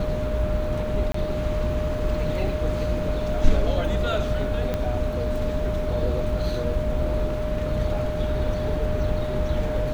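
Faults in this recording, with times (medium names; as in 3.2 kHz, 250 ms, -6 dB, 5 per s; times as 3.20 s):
whine 610 Hz -28 dBFS
1.12–1.14 s: dropout 24 ms
4.74 s: pop -13 dBFS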